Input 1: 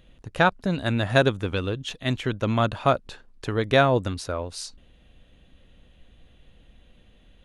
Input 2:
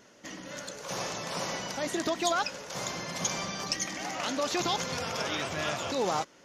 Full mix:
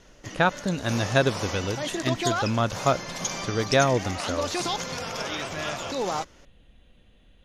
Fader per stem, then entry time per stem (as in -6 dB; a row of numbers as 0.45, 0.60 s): -2.0, +1.0 dB; 0.00, 0.00 s